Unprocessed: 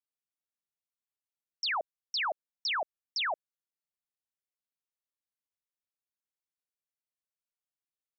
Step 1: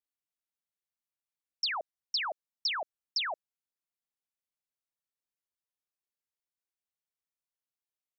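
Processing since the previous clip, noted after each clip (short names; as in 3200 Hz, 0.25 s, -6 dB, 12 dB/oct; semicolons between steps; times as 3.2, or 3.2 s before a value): dynamic EQ 5500 Hz, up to +8 dB, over -48 dBFS, Q 1.3; gain -3.5 dB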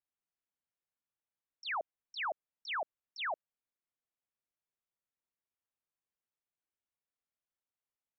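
running mean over 9 samples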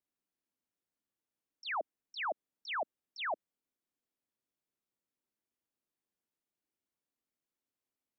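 bell 280 Hz +11.5 dB 1.5 oct; gain -1 dB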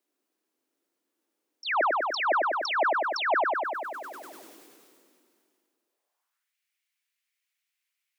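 dark delay 98 ms, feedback 52%, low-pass 1500 Hz, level -3 dB; high-pass sweep 330 Hz -> 2200 Hz, 5.82–6.55; sustainer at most 24 dB/s; gain +8.5 dB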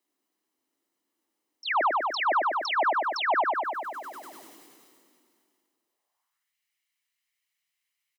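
comb 1 ms, depth 38%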